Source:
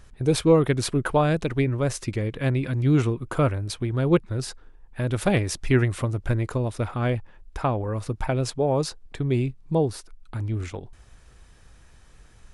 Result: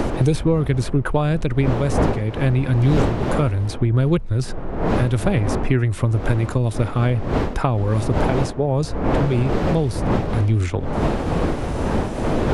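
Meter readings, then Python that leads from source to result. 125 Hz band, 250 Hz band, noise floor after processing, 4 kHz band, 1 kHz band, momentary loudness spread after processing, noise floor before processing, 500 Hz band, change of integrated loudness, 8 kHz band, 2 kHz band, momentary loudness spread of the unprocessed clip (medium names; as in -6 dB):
+6.5 dB, +5.0 dB, -28 dBFS, +1.0 dB, +5.5 dB, 4 LU, -51 dBFS, +3.0 dB, +4.5 dB, -1.5 dB, +3.5 dB, 10 LU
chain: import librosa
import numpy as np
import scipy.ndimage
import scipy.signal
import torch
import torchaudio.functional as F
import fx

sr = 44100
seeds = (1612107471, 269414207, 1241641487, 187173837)

y = fx.dmg_wind(x, sr, seeds[0], corner_hz=550.0, level_db=-28.0)
y = fx.low_shelf(y, sr, hz=110.0, db=10.5)
y = fx.band_squash(y, sr, depth_pct=100)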